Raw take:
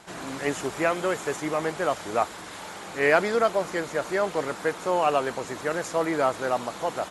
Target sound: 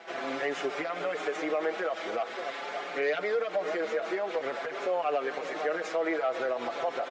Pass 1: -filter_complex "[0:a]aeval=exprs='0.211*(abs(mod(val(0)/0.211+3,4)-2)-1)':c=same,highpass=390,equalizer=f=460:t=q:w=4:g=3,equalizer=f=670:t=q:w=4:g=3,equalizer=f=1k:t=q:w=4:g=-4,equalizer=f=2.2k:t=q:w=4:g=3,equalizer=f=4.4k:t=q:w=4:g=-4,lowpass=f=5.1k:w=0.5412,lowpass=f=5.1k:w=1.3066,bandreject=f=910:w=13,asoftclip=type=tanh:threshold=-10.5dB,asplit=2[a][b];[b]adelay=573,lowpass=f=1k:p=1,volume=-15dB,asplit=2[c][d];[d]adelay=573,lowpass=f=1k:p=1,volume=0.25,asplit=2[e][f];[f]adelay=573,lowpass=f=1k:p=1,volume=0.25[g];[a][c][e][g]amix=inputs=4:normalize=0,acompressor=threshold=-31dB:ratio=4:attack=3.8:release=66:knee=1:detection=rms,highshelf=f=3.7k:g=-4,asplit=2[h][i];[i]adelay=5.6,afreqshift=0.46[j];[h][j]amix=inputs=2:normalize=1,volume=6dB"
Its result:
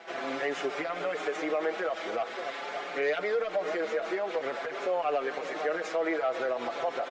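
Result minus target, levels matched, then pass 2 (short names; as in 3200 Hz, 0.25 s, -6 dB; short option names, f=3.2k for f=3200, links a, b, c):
soft clip: distortion +19 dB
-filter_complex "[0:a]aeval=exprs='0.211*(abs(mod(val(0)/0.211+3,4)-2)-1)':c=same,highpass=390,equalizer=f=460:t=q:w=4:g=3,equalizer=f=670:t=q:w=4:g=3,equalizer=f=1k:t=q:w=4:g=-4,equalizer=f=2.2k:t=q:w=4:g=3,equalizer=f=4.4k:t=q:w=4:g=-4,lowpass=f=5.1k:w=0.5412,lowpass=f=5.1k:w=1.3066,bandreject=f=910:w=13,asoftclip=type=tanh:threshold=-0.5dB,asplit=2[a][b];[b]adelay=573,lowpass=f=1k:p=1,volume=-15dB,asplit=2[c][d];[d]adelay=573,lowpass=f=1k:p=1,volume=0.25,asplit=2[e][f];[f]adelay=573,lowpass=f=1k:p=1,volume=0.25[g];[a][c][e][g]amix=inputs=4:normalize=0,acompressor=threshold=-31dB:ratio=4:attack=3.8:release=66:knee=1:detection=rms,highshelf=f=3.7k:g=-4,asplit=2[h][i];[i]adelay=5.6,afreqshift=0.46[j];[h][j]amix=inputs=2:normalize=1,volume=6dB"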